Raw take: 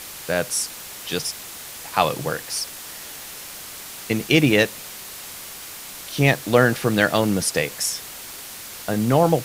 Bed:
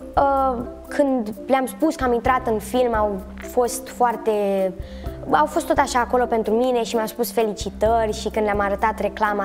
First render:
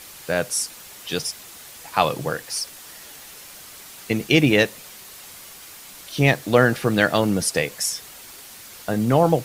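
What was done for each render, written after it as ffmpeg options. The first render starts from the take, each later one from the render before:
ffmpeg -i in.wav -af "afftdn=noise_reduction=6:noise_floor=-37" out.wav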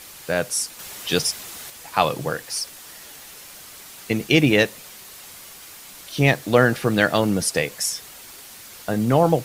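ffmpeg -i in.wav -filter_complex "[0:a]asplit=3[link_01][link_02][link_03];[link_01]atrim=end=0.792[link_04];[link_02]atrim=start=0.788:end=1.702,asetpts=PTS-STARTPTS,volume=5dB[link_05];[link_03]atrim=start=1.698[link_06];[link_04][link_05]acrossfade=duration=0.004:curve1=hsin:curve2=hsin[link_07];[link_07][link_06]acrossfade=duration=0.004:curve1=hsin:curve2=hsin" out.wav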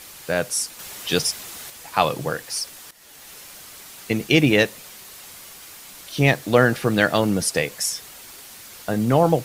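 ffmpeg -i in.wav -filter_complex "[0:a]asplit=2[link_01][link_02];[link_01]atrim=end=2.91,asetpts=PTS-STARTPTS,afade=type=out:start_time=2.906:duration=0.004:curve=hsin:silence=0.177828[link_03];[link_02]atrim=start=2.91,asetpts=PTS-STARTPTS,afade=type=in:duration=0.42:silence=0.177828[link_04];[link_03][link_04]concat=n=2:v=0:a=1" out.wav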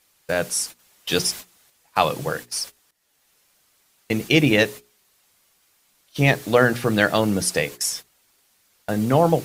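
ffmpeg -i in.wav -af "agate=range=-21dB:threshold=-32dB:ratio=16:detection=peak,bandreject=frequency=60:width_type=h:width=6,bandreject=frequency=120:width_type=h:width=6,bandreject=frequency=180:width_type=h:width=6,bandreject=frequency=240:width_type=h:width=6,bandreject=frequency=300:width_type=h:width=6,bandreject=frequency=360:width_type=h:width=6,bandreject=frequency=420:width_type=h:width=6" out.wav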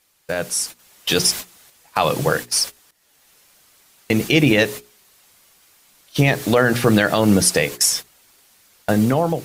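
ffmpeg -i in.wav -af "alimiter=limit=-12.5dB:level=0:latency=1:release=116,dynaudnorm=framelen=320:gausssize=5:maxgain=9dB" out.wav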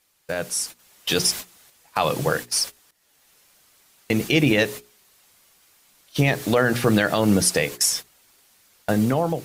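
ffmpeg -i in.wav -af "volume=-3.5dB" out.wav

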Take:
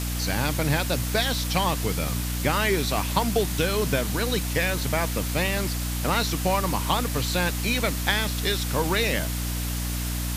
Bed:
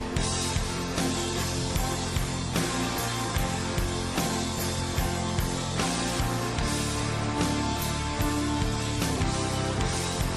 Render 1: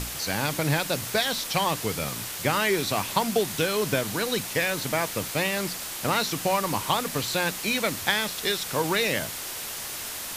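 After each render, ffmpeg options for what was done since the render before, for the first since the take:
ffmpeg -i in.wav -af "bandreject=frequency=60:width_type=h:width=6,bandreject=frequency=120:width_type=h:width=6,bandreject=frequency=180:width_type=h:width=6,bandreject=frequency=240:width_type=h:width=6,bandreject=frequency=300:width_type=h:width=6" out.wav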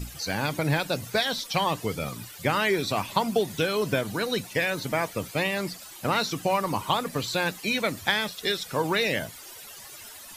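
ffmpeg -i in.wav -af "afftdn=noise_reduction=15:noise_floor=-35" out.wav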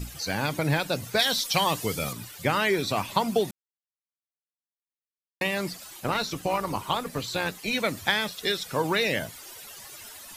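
ffmpeg -i in.wav -filter_complex "[0:a]asettb=1/sr,asplit=3[link_01][link_02][link_03];[link_01]atrim=end=1.194[link_04];[link_02]atrim=start=1.19:end=2.13,asetpts=PTS-STARTPTS,afade=type=in:duration=0.004:curve=qsin,afade=type=out:start_time=0.936:duration=0.004:curve=qsin,highshelf=frequency=3500:gain=8.5[link_05];[link_03]atrim=start=2.126[link_06];[link_04][link_05]acrossfade=duration=0.004:curve1=hsin:curve2=qsin[link_07];[link_07][link_06]acrossfade=duration=0.004:curve1=qsin:curve2=hsin,asettb=1/sr,asplit=3[link_08][link_09][link_10];[link_08]atrim=end=6.004[link_11];[link_09]atrim=start=6:end=7.73,asetpts=PTS-STARTPTS,afade=type=in:duration=0.004:curve=qsin,afade=type=out:start_time=1.726:duration=0.004:curve=qsin,tremolo=f=250:d=0.519[link_12];[link_10]atrim=start=7.726[link_13];[link_11][link_12]acrossfade=duration=0.004:curve1=hsin:curve2=qsin[link_14];[link_14][link_13]acrossfade=duration=0.004:curve1=qsin:curve2=hsin,asplit=3[link_15][link_16][link_17];[link_15]atrim=end=3.51,asetpts=PTS-STARTPTS,afade=type=out:start_time=3.506:duration=0.004:curve=hsin[link_18];[link_16]atrim=start=3.51:end=5.41,asetpts=PTS-STARTPTS,volume=0[link_19];[link_17]atrim=start=5.41,asetpts=PTS-STARTPTS,afade=type=in:duration=0.004:curve=hsin[link_20];[link_18][link_19][link_20]concat=n=3:v=0:a=1" out.wav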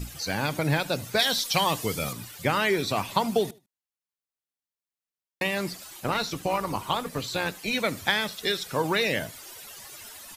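ffmpeg -i in.wav -af "aecho=1:1:76|152:0.075|0.021" out.wav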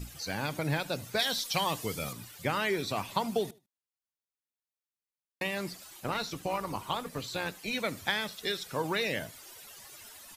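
ffmpeg -i in.wav -af "volume=-6dB" out.wav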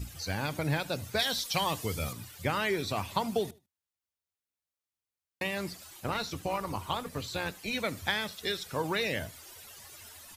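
ffmpeg -i in.wav -af "equalizer=frequency=84:width=3.6:gain=15" out.wav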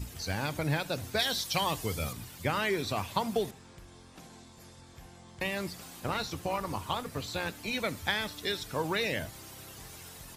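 ffmpeg -i in.wav -i bed.wav -filter_complex "[1:a]volume=-23.5dB[link_01];[0:a][link_01]amix=inputs=2:normalize=0" out.wav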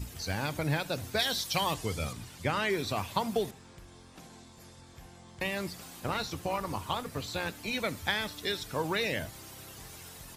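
ffmpeg -i in.wav -filter_complex "[0:a]asettb=1/sr,asplit=3[link_01][link_02][link_03];[link_01]atrim=end=1.744[link_04];[link_02]atrim=start=1.74:end=2.7,asetpts=PTS-STARTPTS,afade=type=in:duration=0.004:curve=qsin,afade=type=out:start_time=0.956:duration=0.004:curve=qsin,lowpass=9800[link_05];[link_03]atrim=start=2.696[link_06];[link_04][link_05]acrossfade=duration=0.004:curve1=hsin:curve2=qsin[link_07];[link_07][link_06]acrossfade=duration=0.004:curve1=qsin:curve2=hsin" out.wav

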